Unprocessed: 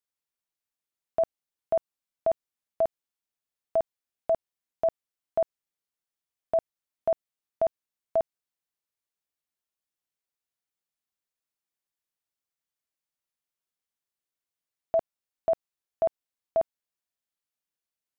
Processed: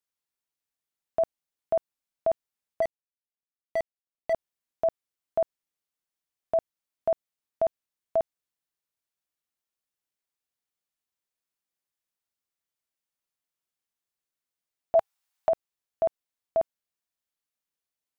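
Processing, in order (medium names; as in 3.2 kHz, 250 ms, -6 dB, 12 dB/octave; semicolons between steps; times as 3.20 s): 2.82–4.33 s: median filter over 41 samples; 14.95–15.49 s: FFT filter 110 Hz 0 dB, 440 Hz -6 dB, 790 Hz +9 dB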